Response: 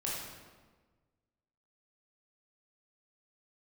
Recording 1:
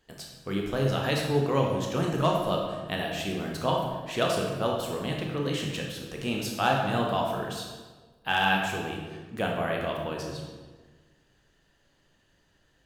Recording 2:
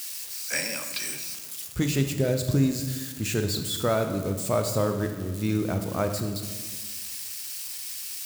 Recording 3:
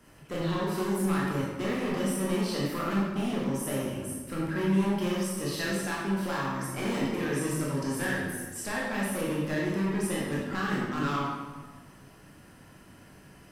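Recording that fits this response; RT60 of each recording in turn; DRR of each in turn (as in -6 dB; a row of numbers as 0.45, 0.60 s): 3; 1.4, 1.4, 1.4 s; -0.5, 5.5, -5.5 dB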